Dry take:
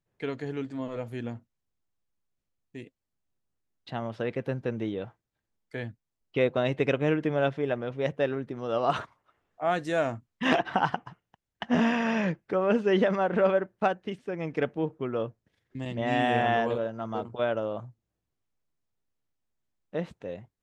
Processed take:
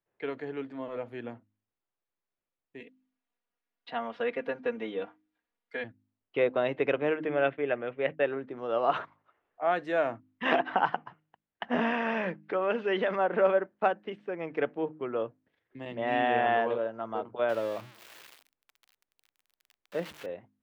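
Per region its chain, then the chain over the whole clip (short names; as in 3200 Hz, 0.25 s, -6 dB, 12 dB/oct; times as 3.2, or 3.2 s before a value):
2.8–5.84 tilt shelf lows -3.5 dB, about 910 Hz + comb 4.2 ms, depth 84%
7.28–8.25 expander -36 dBFS + synth low-pass 2600 Hz, resonance Q 1.8 + bell 950 Hz -5.5 dB 0.34 oct
12.43–13.15 LPF 4700 Hz + compressor 2:1, threshold -26 dBFS + high shelf 2200 Hz +11.5 dB
17.49–20.26 switching spikes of -24 dBFS + bell 72 Hz +5.5 dB 2.4 oct + notch 750 Hz, Q 16
whole clip: three-band isolator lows -13 dB, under 280 Hz, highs -22 dB, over 3400 Hz; de-hum 51.67 Hz, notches 6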